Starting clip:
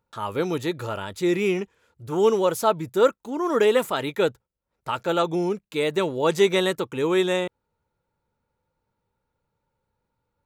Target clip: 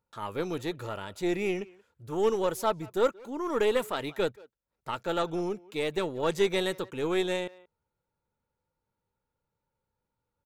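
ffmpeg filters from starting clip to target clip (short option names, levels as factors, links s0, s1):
-filter_complex "[0:a]asplit=2[s0][s1];[s1]adelay=180,highpass=300,lowpass=3400,asoftclip=type=hard:threshold=0.15,volume=0.0891[s2];[s0][s2]amix=inputs=2:normalize=0,aeval=exprs='0.447*(cos(1*acos(clip(val(0)/0.447,-1,1)))-cos(1*PI/2))+0.0251*(cos(6*acos(clip(val(0)/0.447,-1,1)))-cos(6*PI/2))':c=same,volume=0.447"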